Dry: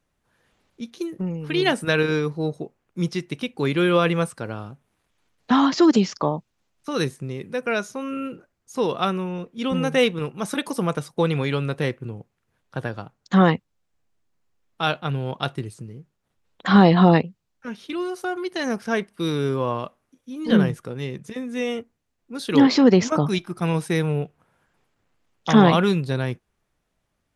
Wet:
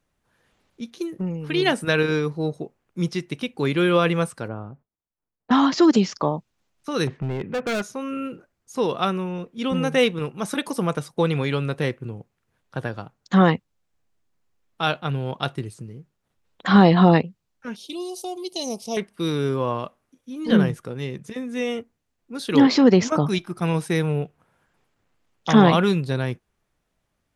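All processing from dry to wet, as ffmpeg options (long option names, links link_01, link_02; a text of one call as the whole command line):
ffmpeg -i in.wav -filter_complex "[0:a]asettb=1/sr,asplit=3[link_01][link_02][link_03];[link_01]atrim=end=4.484[link_04];[link_02]atrim=start=4.48:end=5.51,asetpts=PTS-STARTPTS,afade=type=in:duration=0.004:curve=qsin,afade=type=out:start_time=1.026:duration=0.004:curve=qsin,agate=range=-33dB:threshold=-58dB:ratio=3:release=100:detection=peak,lowpass=1200[link_05];[link_03]atrim=start=5.506[link_06];[link_04][link_05]acrossfade=duration=0.004:curve1=hsin:curve2=qsin[link_07];[link_07][link_06]acrossfade=duration=0.004:curve1=qsin:curve2=hsin,asettb=1/sr,asplit=3[link_08][link_09][link_10];[link_08]atrim=end=7.074[link_11];[link_09]atrim=start=7.07:end=7.82,asetpts=PTS-STARTPTS,afade=type=in:duration=0.004:curve=qsin,afade=type=out:start_time=0.746:duration=0.004:curve=qsin,lowpass=frequency=2800:width=0.5412,lowpass=frequency=2800:width=1.3066,acontrast=61,volume=22.5dB,asoftclip=hard,volume=-22.5dB[link_12];[link_10]atrim=start=7.816[link_13];[link_11][link_12]acrossfade=duration=0.004:curve1=hsin:curve2=qsin[link_14];[link_14][link_13]acrossfade=duration=0.004:curve1=qsin:curve2=hsin,asettb=1/sr,asplit=3[link_15][link_16][link_17];[link_15]atrim=end=17.764[link_18];[link_16]atrim=start=17.76:end=18.97,asetpts=PTS-STARTPTS,afade=type=in:duration=0.004:curve=qsin,afade=type=out:start_time=1.206:duration=0.004:curve=qsin,asuperstop=centerf=1600:order=4:qfactor=0.53,tiltshelf=frequency=640:gain=-7.5[link_19];[link_17]atrim=start=18.966[link_20];[link_18][link_19]acrossfade=duration=0.004:curve1=hsin:curve2=qsin[link_21];[link_21][link_20]acrossfade=duration=0.004:curve1=qsin:curve2=hsin" out.wav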